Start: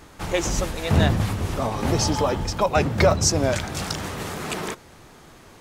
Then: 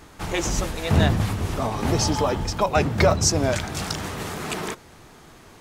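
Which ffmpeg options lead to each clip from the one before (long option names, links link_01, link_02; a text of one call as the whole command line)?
ffmpeg -i in.wav -af "bandreject=frequency=540:width=18" out.wav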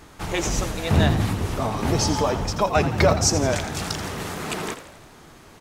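ffmpeg -i in.wav -filter_complex "[0:a]asplit=7[link_01][link_02][link_03][link_04][link_05][link_06][link_07];[link_02]adelay=84,afreqshift=70,volume=-12.5dB[link_08];[link_03]adelay=168,afreqshift=140,volume=-17.5dB[link_09];[link_04]adelay=252,afreqshift=210,volume=-22.6dB[link_10];[link_05]adelay=336,afreqshift=280,volume=-27.6dB[link_11];[link_06]adelay=420,afreqshift=350,volume=-32.6dB[link_12];[link_07]adelay=504,afreqshift=420,volume=-37.7dB[link_13];[link_01][link_08][link_09][link_10][link_11][link_12][link_13]amix=inputs=7:normalize=0" out.wav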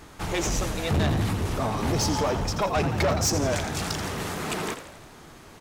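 ffmpeg -i in.wav -af "asoftclip=type=tanh:threshold=-19dB" out.wav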